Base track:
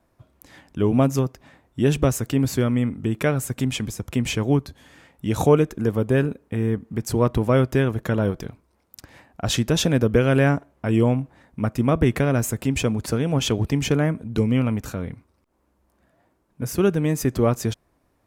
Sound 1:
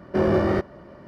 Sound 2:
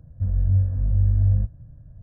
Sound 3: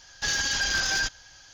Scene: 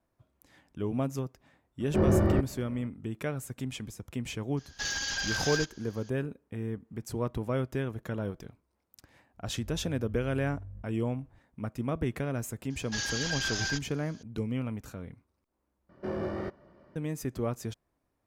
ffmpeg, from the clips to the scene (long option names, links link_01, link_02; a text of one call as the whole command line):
ffmpeg -i bed.wav -i cue0.wav -i cue1.wav -i cue2.wav -filter_complex "[1:a]asplit=2[link_01][link_02];[3:a]asplit=2[link_03][link_04];[0:a]volume=-12.5dB[link_05];[link_01]aemphasis=mode=reproduction:type=bsi[link_06];[2:a]acompressor=threshold=-25dB:ratio=6:attack=3.2:release=140:knee=1:detection=peak[link_07];[link_04]lowpass=11000[link_08];[link_05]asplit=2[link_09][link_10];[link_09]atrim=end=15.894[link_11];[link_02]atrim=end=1.07,asetpts=PTS-STARTPTS,volume=-13.5dB[link_12];[link_10]atrim=start=16.956[link_13];[link_06]atrim=end=1.07,asetpts=PTS-STARTPTS,volume=-8dB,afade=type=in:duration=0.004:curve=hsin,afade=type=out:start_time=1.066:duration=0.004:curve=hsin,adelay=1800[link_14];[link_03]atrim=end=1.53,asetpts=PTS-STARTPTS,volume=-6.5dB,afade=type=in:duration=0.004:curve=hsin,afade=type=out:start_time=1.526:duration=0.004:curve=hsin,adelay=201537S[link_15];[link_07]atrim=end=2.02,asetpts=PTS-STARTPTS,volume=-16dB,afade=type=in:duration=0.004:curve=hsin,afade=type=out:start_time=2.016:duration=0.004:curve=hsin,adelay=9370[link_16];[link_08]atrim=end=1.53,asetpts=PTS-STARTPTS,volume=-7dB,afade=type=in:duration=0.004:curve=hsin,afade=type=out:start_time=1.526:duration=0.004:curve=hsin,adelay=12700[link_17];[link_11][link_12]acrossfade=duration=0.004:curve1=hsin:curve2=hsin[link_18];[link_18][link_13]acrossfade=duration=0.004:curve1=hsin:curve2=hsin[link_19];[link_19][link_14][link_15][link_16][link_17]amix=inputs=5:normalize=0" out.wav